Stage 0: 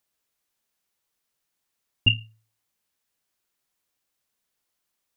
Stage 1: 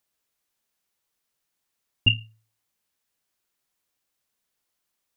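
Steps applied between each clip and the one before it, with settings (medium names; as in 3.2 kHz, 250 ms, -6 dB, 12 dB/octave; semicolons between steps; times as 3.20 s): no audible change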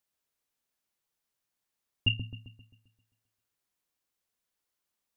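feedback echo behind a low-pass 132 ms, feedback 48%, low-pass 1.2 kHz, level -5 dB; dynamic bell 1.3 kHz, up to -7 dB, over -37 dBFS, Q 0.92; trim -6 dB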